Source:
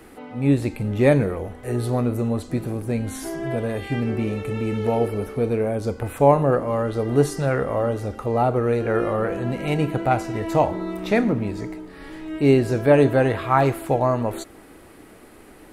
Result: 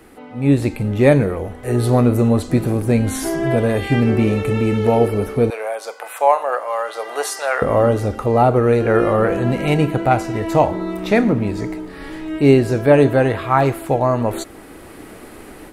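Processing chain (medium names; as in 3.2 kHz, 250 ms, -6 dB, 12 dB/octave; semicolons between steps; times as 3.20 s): 5.50–7.62 s: high-pass 650 Hz 24 dB/octave; level rider gain up to 9 dB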